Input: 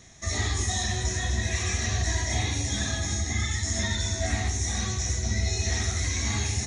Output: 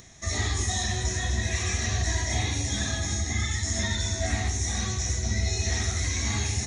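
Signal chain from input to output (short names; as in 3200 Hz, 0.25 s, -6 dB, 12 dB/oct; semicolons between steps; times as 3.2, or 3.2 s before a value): upward compressor, threshold -48 dBFS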